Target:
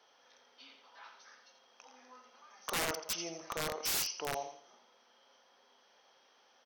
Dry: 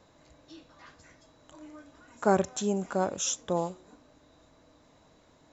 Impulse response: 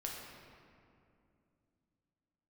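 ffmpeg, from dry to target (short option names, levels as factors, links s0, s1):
-af "highpass=1000,aecho=1:1:70|140|210|280:0.398|0.119|0.0358|0.0107,aeval=exprs='(mod(23.7*val(0)+1,2)-1)/23.7':c=same,asetrate=36603,aresample=44100"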